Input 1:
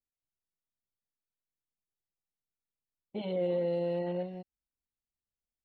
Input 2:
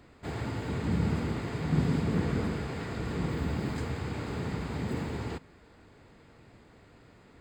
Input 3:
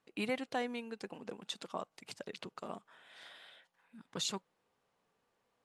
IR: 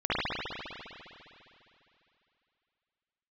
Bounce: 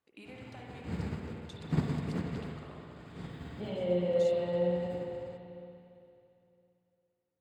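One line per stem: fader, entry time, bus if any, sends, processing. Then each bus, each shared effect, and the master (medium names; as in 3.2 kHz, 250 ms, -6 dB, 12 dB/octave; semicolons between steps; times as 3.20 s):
-7.0 dB, 0.45 s, send -7.5 dB, none
-2.0 dB, 0.00 s, send -18.5 dB, high-pass 59 Hz; upward expansion 2.5:1, over -48 dBFS
-10.0 dB, 0.00 s, send -10.5 dB, compression, threshold -41 dBFS, peak gain reduction 10 dB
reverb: on, RT60 2.9 s, pre-delay 50 ms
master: none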